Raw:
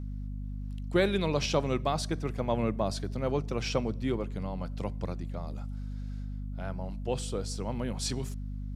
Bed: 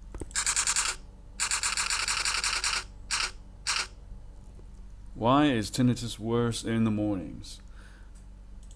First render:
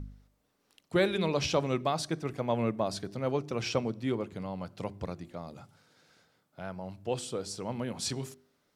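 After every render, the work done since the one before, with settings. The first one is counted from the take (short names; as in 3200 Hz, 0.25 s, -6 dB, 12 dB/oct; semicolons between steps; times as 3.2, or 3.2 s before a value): de-hum 50 Hz, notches 8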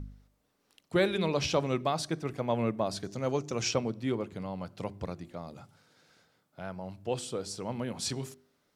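3.03–3.71 bell 6600 Hz +14 dB 0.49 oct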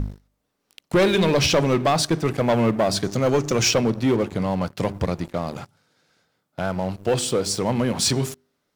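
sample leveller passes 3; in parallel at -1.5 dB: compressor, threshold -28 dBFS, peak gain reduction 10.5 dB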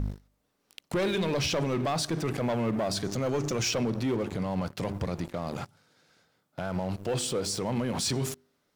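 limiter -22.5 dBFS, peak gain reduction 11.5 dB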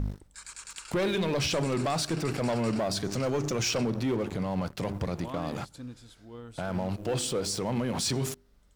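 add bed -17.5 dB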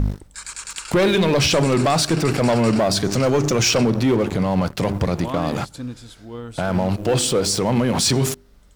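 gain +11 dB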